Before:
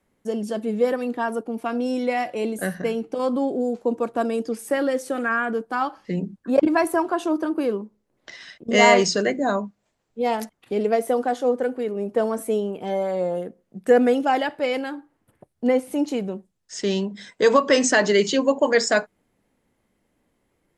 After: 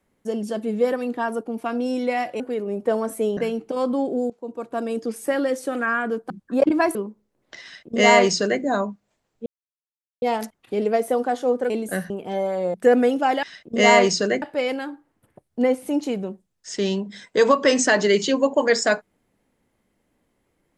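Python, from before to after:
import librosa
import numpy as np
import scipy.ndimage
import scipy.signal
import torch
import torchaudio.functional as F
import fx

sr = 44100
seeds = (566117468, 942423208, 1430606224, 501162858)

y = fx.edit(x, sr, fx.swap(start_s=2.4, length_s=0.4, other_s=11.69, other_length_s=0.97),
    fx.fade_in_from(start_s=3.73, length_s=0.78, floor_db=-18.5),
    fx.cut(start_s=5.73, length_s=0.53),
    fx.cut(start_s=6.91, length_s=0.79),
    fx.duplicate(start_s=8.38, length_s=0.99, to_s=14.47),
    fx.insert_silence(at_s=10.21, length_s=0.76),
    fx.cut(start_s=13.3, length_s=0.48), tone=tone)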